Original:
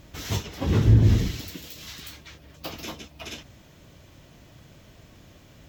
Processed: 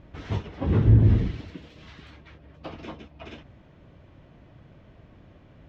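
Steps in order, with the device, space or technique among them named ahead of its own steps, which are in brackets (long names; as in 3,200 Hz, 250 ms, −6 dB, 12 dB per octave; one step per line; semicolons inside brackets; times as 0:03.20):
phone in a pocket (low-pass filter 3,000 Hz 12 dB per octave; high-shelf EQ 2,400 Hz −10 dB)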